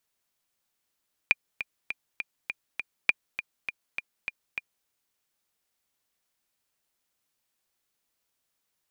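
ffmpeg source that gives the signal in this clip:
ffmpeg -f lavfi -i "aevalsrc='pow(10,(-6-12*gte(mod(t,6*60/202),60/202))/20)*sin(2*PI*2410*mod(t,60/202))*exp(-6.91*mod(t,60/202)/0.03)':duration=3.56:sample_rate=44100" out.wav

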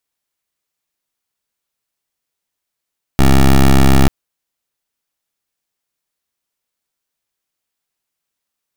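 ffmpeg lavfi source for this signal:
ffmpeg -f lavfi -i "aevalsrc='0.422*(2*lt(mod(67.2*t,1),0.13)-1)':duration=0.89:sample_rate=44100" out.wav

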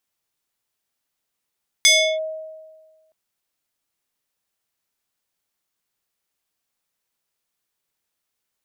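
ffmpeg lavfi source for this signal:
ffmpeg -f lavfi -i "aevalsrc='0.376*pow(10,-3*t/1.47)*sin(2*PI*632*t+2.5*clip(1-t/0.34,0,1)*sin(2*PI*4.46*632*t))':duration=1.27:sample_rate=44100" out.wav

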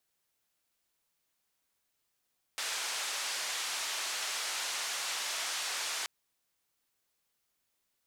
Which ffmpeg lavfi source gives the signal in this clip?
ffmpeg -f lavfi -i "anoisesrc=color=white:duration=3.48:sample_rate=44100:seed=1,highpass=frequency=750,lowpass=frequency=6900,volume=-25.8dB" out.wav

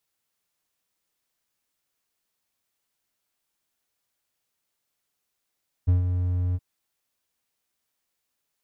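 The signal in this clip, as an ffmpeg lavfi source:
ffmpeg -f lavfi -i "aevalsrc='0.224*(1-4*abs(mod(89.8*t+0.25,1)-0.5))':duration=0.721:sample_rate=44100,afade=type=in:duration=0.019,afade=type=out:start_time=0.019:duration=0.131:silence=0.447,afade=type=out:start_time=0.68:duration=0.041" out.wav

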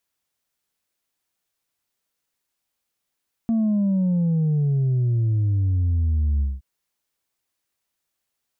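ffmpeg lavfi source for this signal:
ffmpeg -f lavfi -i "aevalsrc='0.126*clip((3.12-t)/0.2,0,1)*tanh(1.26*sin(2*PI*230*3.12/log(65/230)*(exp(log(65/230)*t/3.12)-1)))/tanh(1.26)':duration=3.12:sample_rate=44100" out.wav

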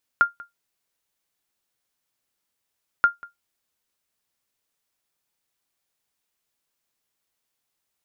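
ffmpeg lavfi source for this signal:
ffmpeg -f lavfi -i "aevalsrc='0.422*(sin(2*PI*1400*mod(t,2.83))*exp(-6.91*mod(t,2.83)/0.15)+0.0708*sin(2*PI*1400*max(mod(t,2.83)-0.19,0))*exp(-6.91*max(mod(t,2.83)-0.19,0)/0.15))':duration=5.66:sample_rate=44100" out.wav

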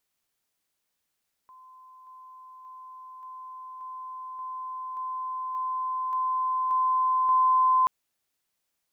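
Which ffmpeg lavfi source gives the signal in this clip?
ffmpeg -f lavfi -i "aevalsrc='pow(10,(-48+3*floor(t/0.58))/20)*sin(2*PI*1030*t)':duration=6.38:sample_rate=44100" out.wav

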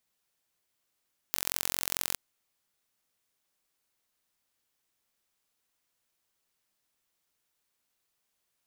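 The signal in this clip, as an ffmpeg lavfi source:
ffmpeg -f lavfi -i "aevalsrc='0.891*eq(mod(n,989),0)*(0.5+0.5*eq(mod(n,1978),0))':duration=0.82:sample_rate=44100" out.wav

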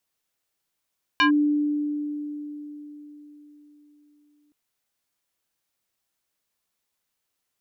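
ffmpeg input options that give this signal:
ffmpeg -f lavfi -i "aevalsrc='0.188*pow(10,-3*t/4.23)*sin(2*PI*295*t+2.4*clip(1-t/0.11,0,1)*sin(2*PI*4.51*295*t))':duration=3.32:sample_rate=44100" out.wav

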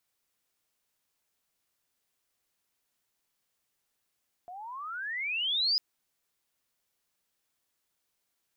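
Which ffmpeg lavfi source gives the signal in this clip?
ffmpeg -f lavfi -i "aevalsrc='pow(10,(-23+18*(t/1.3-1))/20)*sin(2*PI*692*1.3/(34.5*log(2)/12)*(exp(34.5*log(2)/12*t/1.3)-1))':duration=1.3:sample_rate=44100" out.wav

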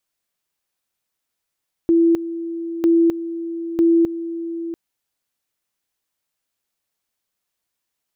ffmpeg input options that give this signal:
ffmpeg -f lavfi -i "aevalsrc='pow(10,(-11-13*gte(mod(t,0.95),0.26))/20)*sin(2*PI*334*t)':duration=2.85:sample_rate=44100" out.wav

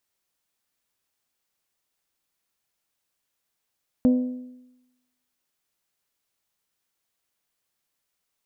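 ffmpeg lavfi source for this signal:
ffmpeg -f lavfi -i "aevalsrc='0.224*pow(10,-3*t/0.95)*sin(2*PI*251*t)+0.0631*pow(10,-3*t/0.772)*sin(2*PI*502*t)+0.0178*pow(10,-3*t/0.731)*sin(2*PI*602.4*t)+0.00501*pow(10,-3*t/0.683)*sin(2*PI*753*t)+0.00141*pow(10,-3*t/0.627)*sin(2*PI*1004*t)':duration=1.55:sample_rate=44100" out.wav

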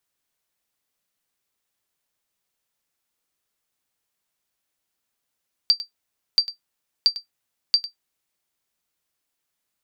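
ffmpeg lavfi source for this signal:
ffmpeg -f lavfi -i "aevalsrc='0.447*(sin(2*PI*4680*mod(t,0.68))*exp(-6.91*mod(t,0.68)/0.12)+0.168*sin(2*PI*4680*max(mod(t,0.68)-0.1,0))*exp(-6.91*max(mod(t,0.68)-0.1,0)/0.12))':duration=2.72:sample_rate=44100" out.wav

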